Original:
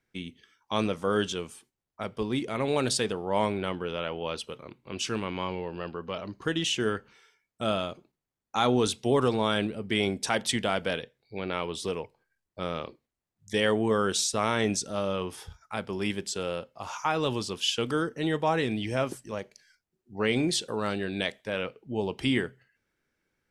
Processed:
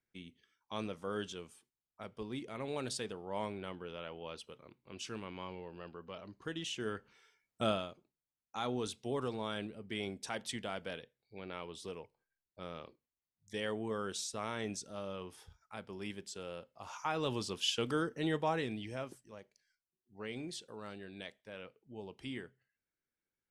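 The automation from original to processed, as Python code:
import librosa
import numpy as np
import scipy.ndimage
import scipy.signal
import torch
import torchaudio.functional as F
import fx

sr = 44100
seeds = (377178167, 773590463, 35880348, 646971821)

y = fx.gain(x, sr, db=fx.line((6.74, -12.5), (7.62, -2.0), (7.92, -13.0), (16.47, -13.0), (17.46, -6.0), (18.35, -6.0), (19.29, -17.0)))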